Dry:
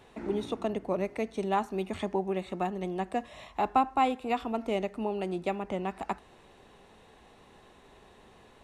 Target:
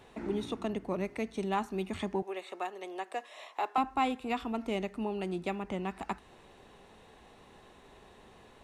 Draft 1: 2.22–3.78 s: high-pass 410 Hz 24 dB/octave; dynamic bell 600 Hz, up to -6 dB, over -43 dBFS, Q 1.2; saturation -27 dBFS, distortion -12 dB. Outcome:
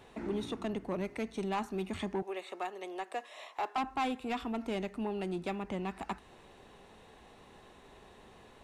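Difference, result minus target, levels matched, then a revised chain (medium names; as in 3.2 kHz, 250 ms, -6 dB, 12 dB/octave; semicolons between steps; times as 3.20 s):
saturation: distortion +15 dB
2.22–3.78 s: high-pass 410 Hz 24 dB/octave; dynamic bell 600 Hz, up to -6 dB, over -43 dBFS, Q 1.2; saturation -16 dBFS, distortion -27 dB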